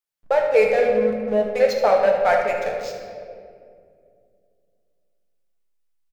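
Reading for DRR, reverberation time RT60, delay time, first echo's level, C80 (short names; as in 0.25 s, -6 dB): 0.0 dB, 2.3 s, 74 ms, -9.5 dB, 5.0 dB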